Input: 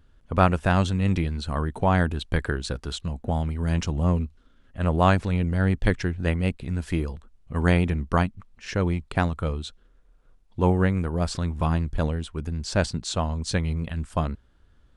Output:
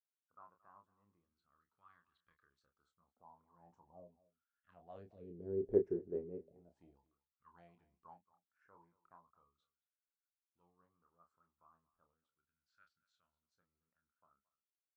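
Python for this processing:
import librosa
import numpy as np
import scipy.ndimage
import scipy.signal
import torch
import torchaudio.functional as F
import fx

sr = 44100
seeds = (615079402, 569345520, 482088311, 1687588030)

p1 = fx.doppler_pass(x, sr, speed_mps=8, closest_m=1.6, pass_at_s=5.75)
p2 = fx.rider(p1, sr, range_db=4, speed_s=2.0)
p3 = p1 + (p2 * librosa.db_to_amplitude(2.0))
p4 = fx.phaser_stages(p3, sr, stages=2, low_hz=640.0, high_hz=3300.0, hz=0.37, feedback_pct=50)
p5 = fx.auto_wah(p4, sr, base_hz=400.0, top_hz=1500.0, q=13.0, full_db=-20.5, direction='down')
p6 = fx.doubler(p5, sr, ms=29.0, db=-6.5)
p7 = p6 + fx.echo_single(p6, sr, ms=225, db=-20.0, dry=0)
y = p7 * librosa.db_to_amplitude(-3.0)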